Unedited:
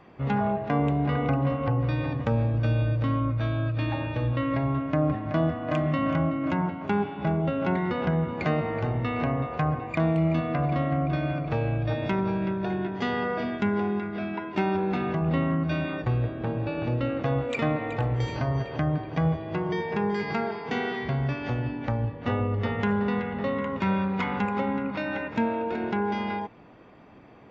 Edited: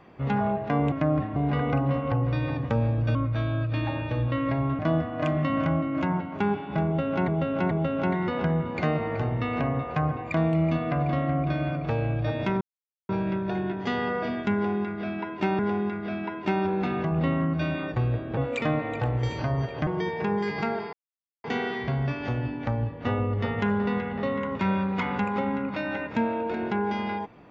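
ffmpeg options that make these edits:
-filter_complex "[0:a]asplit=12[s0][s1][s2][s3][s4][s5][s6][s7][s8][s9][s10][s11];[s0]atrim=end=0.922[s12];[s1]atrim=start=4.838:end=5.282[s13];[s2]atrim=start=0.918:end=2.712[s14];[s3]atrim=start=3.198:end=4.842[s15];[s4]atrim=start=5.278:end=7.772[s16];[s5]atrim=start=7.338:end=7.772[s17];[s6]atrim=start=7.338:end=12.24,asetpts=PTS-STARTPTS,afade=t=out:st=4.898:d=0.004:c=hsin,apad=pad_dur=0.48[s18];[s7]atrim=start=12.24:end=14.742,asetpts=PTS-STARTPTS,afade=t=in:d=0.004:c=hsin[s19];[s8]atrim=start=13.688:end=16.472[s20];[s9]atrim=start=17.338:end=18.842[s21];[s10]atrim=start=19.588:end=20.65,asetpts=PTS-STARTPTS,afade=t=out:st=1.058:d=0.004:c=hsin,apad=pad_dur=0.51[s22];[s11]atrim=start=20.65,asetpts=PTS-STARTPTS,afade=t=in:d=0.004:c=hsin[s23];[s12][s13]acrossfade=d=0.004:c1=hsin:c2=hsin[s24];[s24][s14]acrossfade=d=0.004:c1=hsin:c2=hsin[s25];[s25][s15]acrossfade=d=0.004:c1=hsin:c2=hsin[s26];[s26][s16]acrossfade=d=0.004:c1=hsin:c2=hsin[s27];[s27][s17]acrossfade=d=0.004:c1=hsin:c2=hsin[s28];[s18][s19]concat=n=2:v=0:a=1[s29];[s28][s29]acrossfade=d=0.004:c1=hsin:c2=hsin[s30];[s30][s20]acrossfade=d=0.004:c1=hsin:c2=hsin[s31];[s31][s21]acrossfade=d=0.004:c1=hsin:c2=hsin[s32];[s22][s23]concat=n=2:v=0:a=1[s33];[s32][s33]acrossfade=d=0.004:c1=hsin:c2=hsin"

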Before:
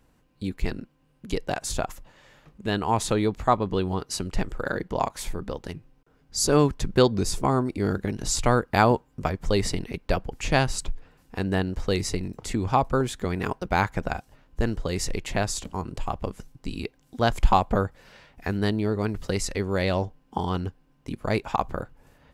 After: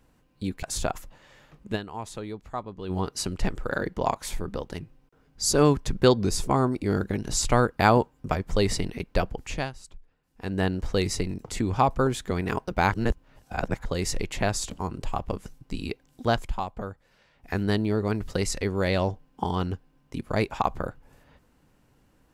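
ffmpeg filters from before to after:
-filter_complex "[0:a]asplit=10[s0][s1][s2][s3][s4][s5][s6][s7][s8][s9];[s0]atrim=end=0.632[s10];[s1]atrim=start=1.568:end=2.92,asetpts=PTS-STARTPTS,afade=t=out:st=1.122:d=0.23:c=exp:silence=0.237137[s11];[s2]atrim=start=2.92:end=3.62,asetpts=PTS-STARTPTS,volume=0.237[s12];[s3]atrim=start=3.62:end=10.66,asetpts=PTS-STARTPTS,afade=t=in:d=0.23:c=exp:silence=0.237137,afade=t=out:st=6.65:d=0.39:silence=0.141254[s13];[s4]atrim=start=10.66:end=11.2,asetpts=PTS-STARTPTS,volume=0.141[s14];[s5]atrim=start=11.2:end=13.862,asetpts=PTS-STARTPTS,afade=t=in:d=0.39:silence=0.141254[s15];[s6]atrim=start=13.858:end=14.792,asetpts=PTS-STARTPTS,areverse[s16];[s7]atrim=start=14.788:end=17.44,asetpts=PTS-STARTPTS,afade=t=out:st=2.422:d=0.23:silence=0.266073[s17];[s8]atrim=start=17.44:end=18.25,asetpts=PTS-STARTPTS,volume=0.266[s18];[s9]atrim=start=18.25,asetpts=PTS-STARTPTS,afade=t=in:d=0.23:silence=0.266073[s19];[s11][s12][s13][s14][s15]concat=n=5:v=0:a=1[s20];[s10][s20]acrossfade=d=0.004:c1=hsin:c2=hsin[s21];[s21][s16]acrossfade=d=0.004:c1=hsin:c2=hsin[s22];[s17][s18][s19]concat=n=3:v=0:a=1[s23];[s22][s23]acrossfade=d=0.004:c1=hsin:c2=hsin"

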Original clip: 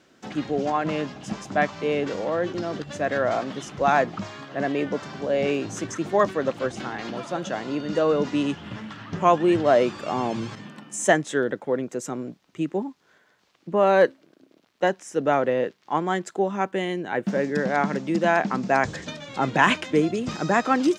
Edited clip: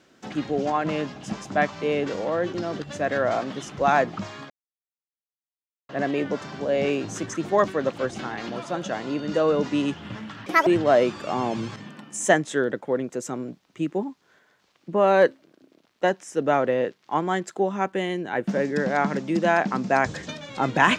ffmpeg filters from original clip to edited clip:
-filter_complex "[0:a]asplit=4[s0][s1][s2][s3];[s0]atrim=end=4.5,asetpts=PTS-STARTPTS,afade=t=out:st=4.496:d=0.004:c=hsin,apad=pad_dur=1.39[s4];[s1]atrim=start=4.5:end=9.074,asetpts=PTS-STARTPTS,afade=t=in:d=0.004:c=hsin[s5];[s2]atrim=start=9.07:end=9.46,asetpts=PTS-STARTPTS,asetrate=82908,aresample=44100,atrim=end_sample=9148,asetpts=PTS-STARTPTS[s6];[s3]atrim=start=9.456[s7];[s4][s5]concat=n=2:v=0:a=1[s8];[s8][s6]acrossfade=d=0.004:c1=hsin:c2=hsin[s9];[s9][s7]acrossfade=d=0.004:c1=hsin:c2=hsin"

